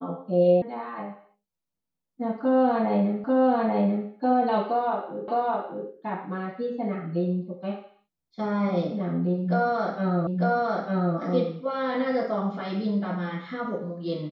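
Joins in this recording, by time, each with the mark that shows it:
0.62 s: sound stops dead
3.24 s: repeat of the last 0.84 s
5.28 s: repeat of the last 0.61 s
10.27 s: repeat of the last 0.9 s

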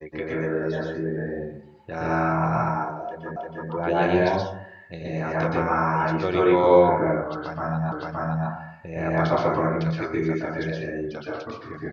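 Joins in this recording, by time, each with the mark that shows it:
3.36 s: repeat of the last 0.32 s
7.92 s: repeat of the last 0.57 s

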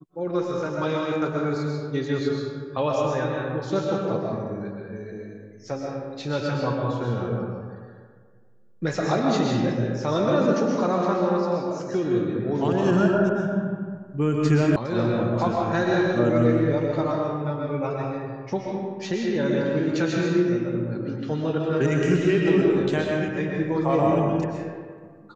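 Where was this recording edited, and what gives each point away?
14.76 s: sound stops dead

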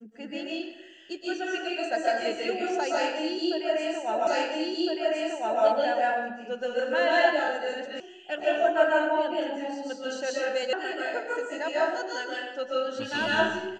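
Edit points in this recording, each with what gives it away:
4.27 s: repeat of the last 1.36 s
8.00 s: sound stops dead
10.73 s: sound stops dead

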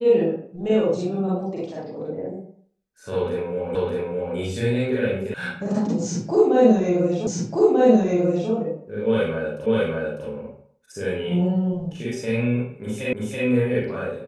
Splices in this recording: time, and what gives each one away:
3.75 s: repeat of the last 0.61 s
5.34 s: sound stops dead
7.27 s: repeat of the last 1.24 s
9.66 s: repeat of the last 0.6 s
13.13 s: repeat of the last 0.33 s

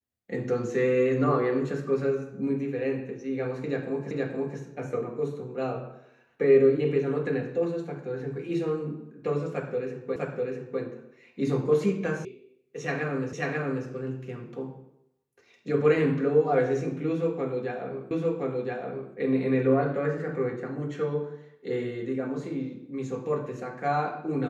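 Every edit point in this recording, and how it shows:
4.11 s: repeat of the last 0.47 s
10.16 s: repeat of the last 0.65 s
12.25 s: sound stops dead
13.33 s: repeat of the last 0.54 s
18.11 s: repeat of the last 1.02 s

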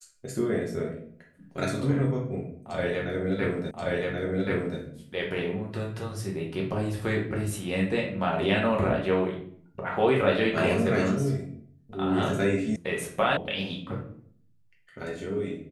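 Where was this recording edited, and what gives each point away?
3.71 s: repeat of the last 1.08 s
12.76 s: sound stops dead
13.37 s: sound stops dead

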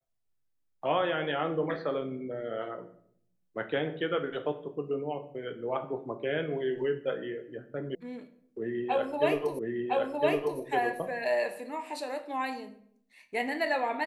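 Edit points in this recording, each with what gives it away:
7.95 s: sound stops dead
9.59 s: repeat of the last 1.01 s

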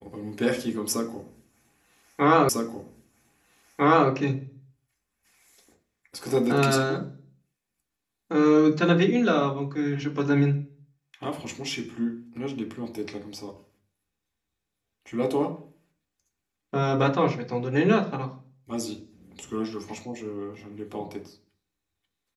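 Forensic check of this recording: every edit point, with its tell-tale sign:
2.49 s: repeat of the last 1.6 s

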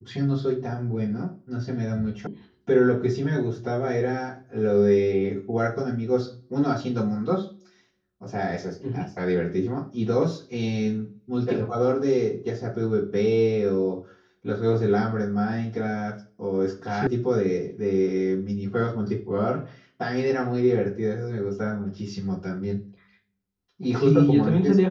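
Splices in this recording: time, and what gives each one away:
2.27 s: sound stops dead
17.07 s: sound stops dead

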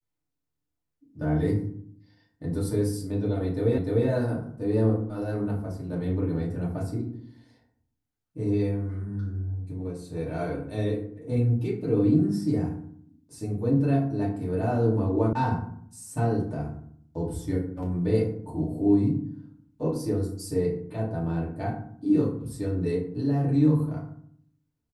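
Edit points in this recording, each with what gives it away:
3.78 s: repeat of the last 0.3 s
15.33 s: sound stops dead

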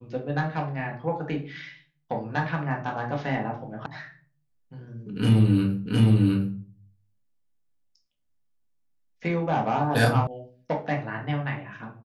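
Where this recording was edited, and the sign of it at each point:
3.86 s: sound stops dead
5.86 s: repeat of the last 0.71 s
10.27 s: sound stops dead

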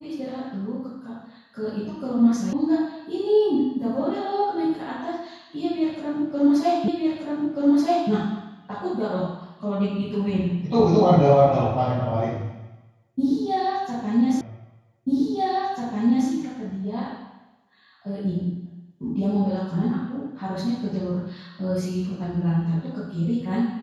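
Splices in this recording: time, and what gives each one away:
2.53 s: sound stops dead
6.88 s: repeat of the last 1.23 s
14.41 s: repeat of the last 1.89 s

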